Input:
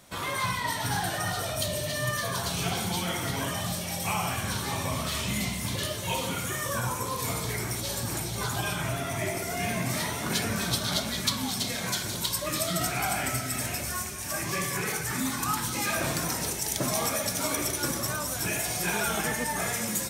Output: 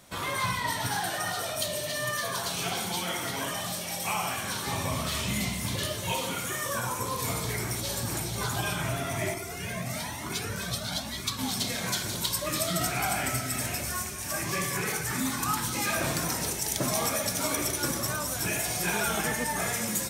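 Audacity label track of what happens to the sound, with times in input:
0.870000	4.670000	HPF 290 Hz 6 dB/oct
6.120000	6.980000	low shelf 130 Hz -10 dB
9.340000	11.390000	cascading flanger rising 1.1 Hz

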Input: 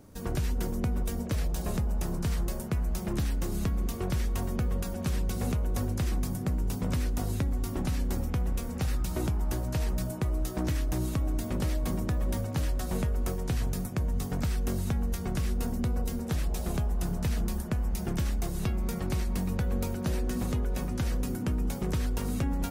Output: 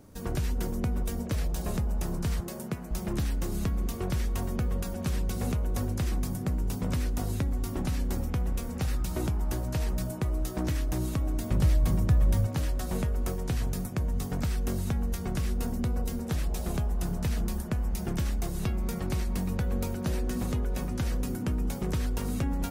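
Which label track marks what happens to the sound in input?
2.400000	2.910000	Chebyshev high-pass 160 Hz
11.510000	12.470000	resonant low shelf 180 Hz +6.5 dB, Q 1.5

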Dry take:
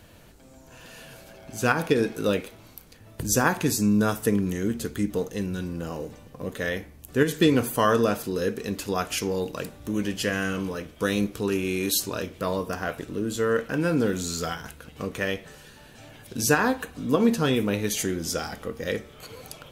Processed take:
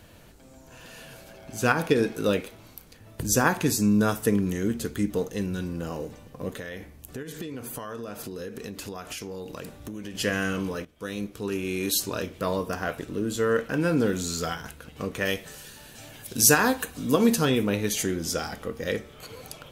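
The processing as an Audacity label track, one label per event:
6.560000	10.150000	compressor 12:1, threshold -32 dBFS
10.850000	12.090000	fade in linear, from -14.5 dB
15.250000	17.450000	high shelf 4600 Hz +11.5 dB

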